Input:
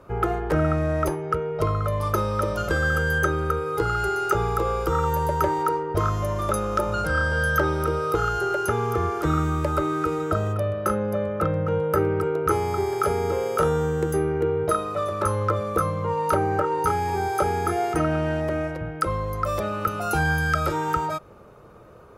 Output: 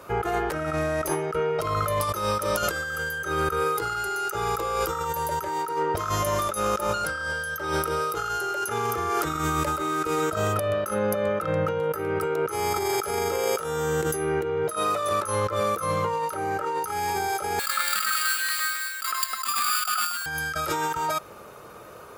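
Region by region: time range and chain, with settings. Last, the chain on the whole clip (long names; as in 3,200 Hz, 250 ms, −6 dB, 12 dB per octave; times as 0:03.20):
0:17.59–0:20.26: Chebyshev high-pass with heavy ripple 1,100 Hz, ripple 3 dB + sample-rate reduction 6,000 Hz + delay that swaps between a low-pass and a high-pass 104 ms, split 2,400 Hz, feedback 52%, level −3 dB
whole clip: spectral tilt +3 dB per octave; compressor whose output falls as the input rises −30 dBFS, ratio −1; level +3 dB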